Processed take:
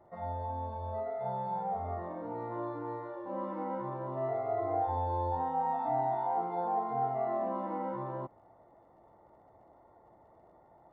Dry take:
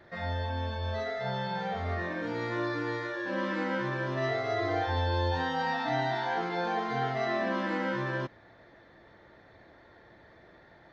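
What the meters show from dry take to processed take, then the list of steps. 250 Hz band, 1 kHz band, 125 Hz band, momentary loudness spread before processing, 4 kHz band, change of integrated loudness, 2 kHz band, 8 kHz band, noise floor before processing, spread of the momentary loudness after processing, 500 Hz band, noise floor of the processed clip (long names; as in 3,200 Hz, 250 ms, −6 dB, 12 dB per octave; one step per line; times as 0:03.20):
−7.0 dB, +0.5 dB, −7.5 dB, 4 LU, below −25 dB, −3.5 dB, −21.5 dB, can't be measured, −57 dBFS, 8 LU, −2.5 dB, −62 dBFS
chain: parametric band 820 Hz +10 dB 0.89 octaves
surface crackle 44 per second −41 dBFS
Savitzky-Golay smoothing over 65 samples
level −7.5 dB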